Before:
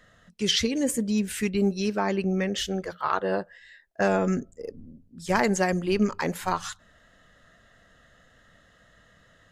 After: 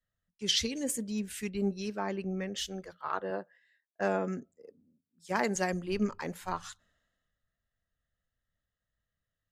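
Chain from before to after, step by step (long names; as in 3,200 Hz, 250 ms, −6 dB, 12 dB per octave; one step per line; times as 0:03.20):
0:03.30–0:05.55: high-pass filter 160 Hz 12 dB per octave
multiband upward and downward expander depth 70%
level −9 dB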